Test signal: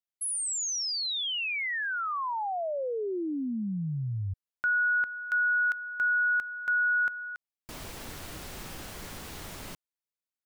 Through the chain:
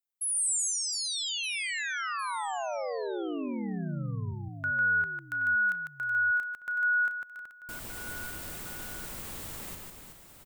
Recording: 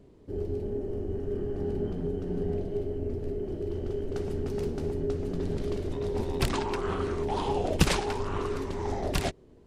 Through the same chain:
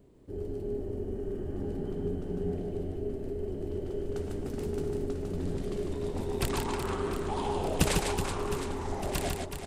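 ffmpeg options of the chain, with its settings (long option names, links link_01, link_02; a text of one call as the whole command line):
ffmpeg -i in.wav -af "aecho=1:1:150|375|712.5|1219|1978:0.631|0.398|0.251|0.158|0.1,aexciter=amount=2.1:drive=5.1:freq=7400,volume=-4dB" out.wav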